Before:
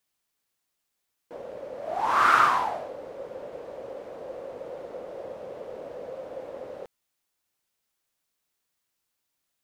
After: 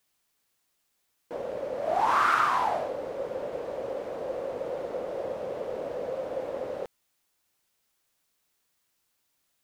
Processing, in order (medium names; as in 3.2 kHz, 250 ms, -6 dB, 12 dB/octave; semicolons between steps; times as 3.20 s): compression 5:1, threshold -26 dBFS, peak gain reduction 10.5 dB; trim +5 dB